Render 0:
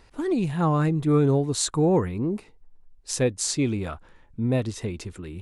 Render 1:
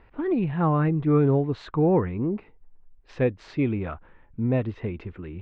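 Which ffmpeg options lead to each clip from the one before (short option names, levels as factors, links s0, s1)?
-af "lowpass=f=2600:w=0.5412,lowpass=f=2600:w=1.3066"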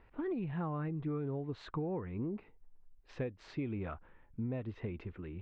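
-af "acompressor=threshold=0.0501:ratio=12,volume=0.422"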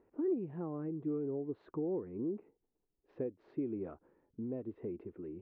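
-af "bandpass=f=360:t=q:w=2:csg=0,volume=1.68"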